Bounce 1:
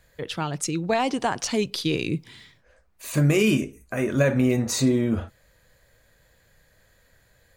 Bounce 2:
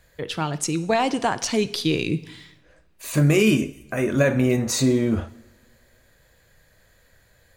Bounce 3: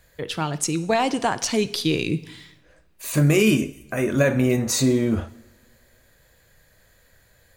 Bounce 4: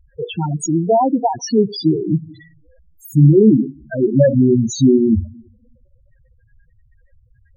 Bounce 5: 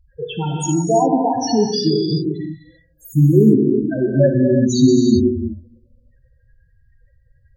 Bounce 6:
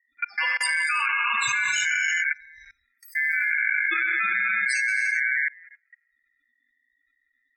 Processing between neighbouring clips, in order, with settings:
coupled-rooms reverb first 0.76 s, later 2.1 s, from −19 dB, DRR 13.5 dB; level +2 dB
high-shelf EQ 8,900 Hz +5 dB
spectral peaks only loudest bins 4; level +9 dB
parametric band 4,600 Hz +8.5 dB 0.39 octaves; reverb whose tail is shaped and stops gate 410 ms flat, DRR 1 dB; level −3 dB
output level in coarse steps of 24 dB; ring modulation 1,900 Hz; level +3 dB

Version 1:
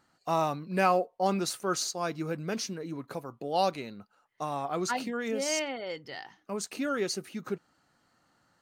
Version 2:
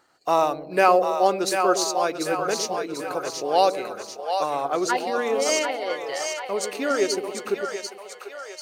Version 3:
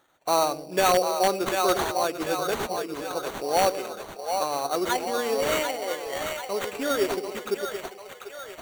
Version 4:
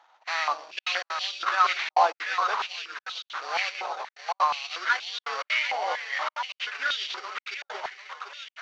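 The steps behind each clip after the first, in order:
low shelf with overshoot 280 Hz −9.5 dB, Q 1.5; transient designer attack +1 dB, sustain −4 dB; echo with a time of its own for lows and highs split 500 Hz, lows 108 ms, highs 742 ms, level −6 dB; level +6.5 dB
in parallel at −5.5 dB: wrap-around overflow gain 9.5 dB; on the sum: sample-rate reduction 5,100 Hz, jitter 0%; level −6 dB
variable-slope delta modulation 32 kbit/s; gate pattern "xxxxxxxxxx.xx." 191 BPM −60 dB; high-pass on a step sequencer 4.2 Hz 860–3,300 Hz

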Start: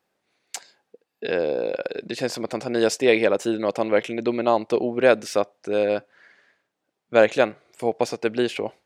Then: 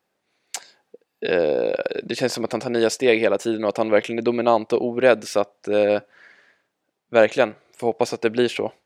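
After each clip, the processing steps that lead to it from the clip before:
automatic gain control gain up to 4 dB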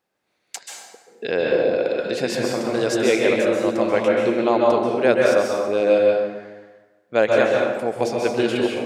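convolution reverb RT60 1.3 s, pre-delay 124 ms, DRR −2 dB
level −3 dB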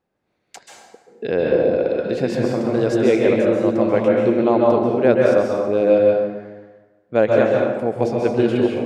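spectral tilt −3 dB per octave
level −1 dB

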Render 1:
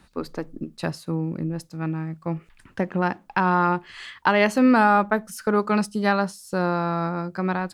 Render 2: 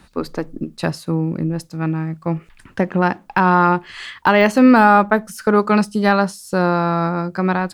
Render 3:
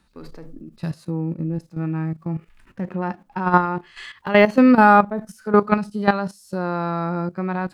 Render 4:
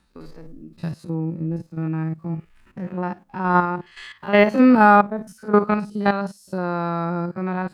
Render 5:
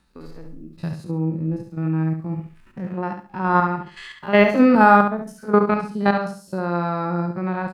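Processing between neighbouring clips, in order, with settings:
de-essing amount 70%; level +6.5 dB
harmonic and percussive parts rebalanced percussive −16 dB; output level in coarse steps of 13 dB; level +2 dB
spectrum averaged block by block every 50 ms
repeating echo 69 ms, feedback 26%, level −7.5 dB

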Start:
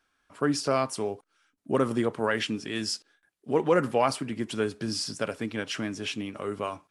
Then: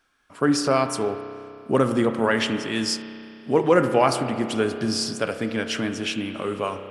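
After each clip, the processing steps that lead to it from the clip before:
spring reverb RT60 2.6 s, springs 31 ms, chirp 45 ms, DRR 7.5 dB
level +5 dB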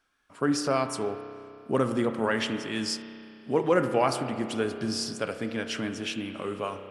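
tape wow and flutter 26 cents
level −5.5 dB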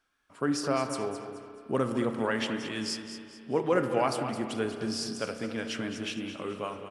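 repeating echo 215 ms, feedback 36%, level −10.5 dB
level −3 dB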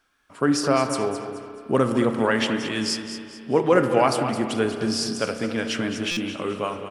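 buffer that repeats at 0:06.11, samples 256, times 9
level +8 dB

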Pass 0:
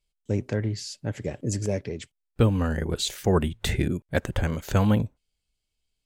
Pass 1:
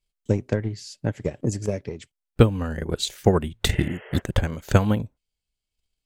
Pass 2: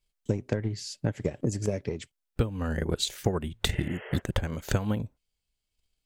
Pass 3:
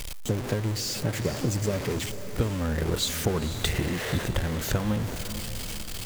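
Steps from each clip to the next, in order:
healed spectral selection 0:03.75–0:04.19, 370–3,300 Hz both; transient designer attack +10 dB, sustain −2 dB; level −2.5 dB
downward compressor 6 to 1, threshold −25 dBFS, peak gain reduction 15.5 dB; level +1.5 dB
converter with a step at zero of −26 dBFS; feedback delay with all-pass diffusion 490 ms, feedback 48%, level −11 dB; level −2 dB

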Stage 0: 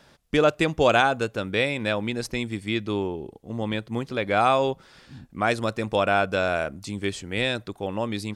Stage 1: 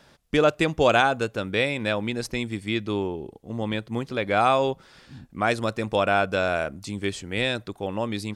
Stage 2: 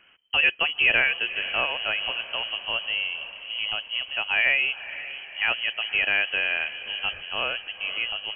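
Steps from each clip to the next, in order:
no processing that can be heard
high-frequency loss of the air 94 metres; feedback delay with all-pass diffusion 507 ms, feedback 55%, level −14 dB; voice inversion scrambler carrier 3,100 Hz; level −1.5 dB

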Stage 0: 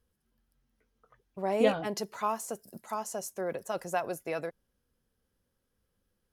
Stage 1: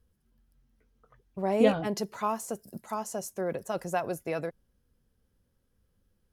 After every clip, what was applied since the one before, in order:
low-shelf EQ 260 Hz +9 dB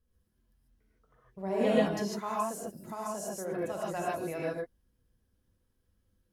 reverb whose tail is shaped and stops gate 170 ms rising, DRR −5.5 dB
level −8.5 dB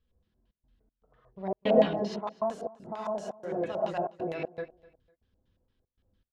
auto-filter low-pass square 4.4 Hz 720–3,500 Hz
gate pattern "xxxx.xx.xxxx.x" 118 BPM −60 dB
repeating echo 251 ms, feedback 30%, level −21.5 dB

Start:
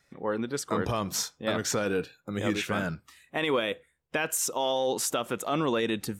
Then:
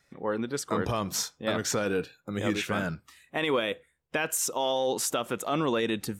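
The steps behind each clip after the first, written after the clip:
no processing that can be heard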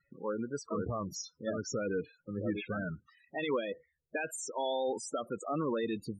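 spectral peaks only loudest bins 16
level −5 dB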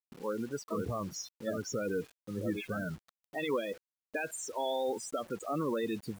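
bit reduction 9 bits

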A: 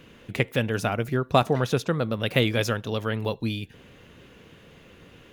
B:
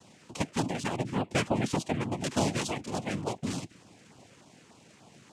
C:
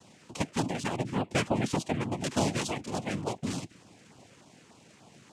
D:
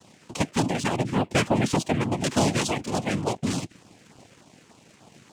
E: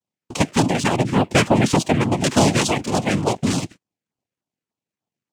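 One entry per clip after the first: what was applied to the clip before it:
in parallel at −6 dB: gain into a clipping stage and back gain 20.5 dB; on the sum: cochlear-implant simulation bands 4; auto-filter notch saw down 3.4 Hz 580–2,400 Hz; level −7.5 dB
no processing that can be heard
leveller curve on the samples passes 1; level +3 dB
noise gate −41 dBFS, range −43 dB; level +6.5 dB

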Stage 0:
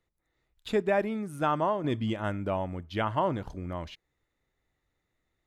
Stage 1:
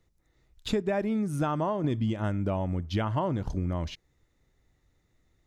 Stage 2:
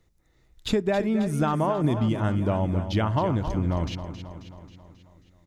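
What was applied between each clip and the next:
low-shelf EQ 340 Hz +10 dB; downward compressor 5 to 1, threshold −28 dBFS, peak gain reduction 10.5 dB; parametric band 5,900 Hz +7 dB 0.89 octaves; level +3 dB
repeating echo 269 ms, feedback 57%, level −10.5 dB; level +4 dB

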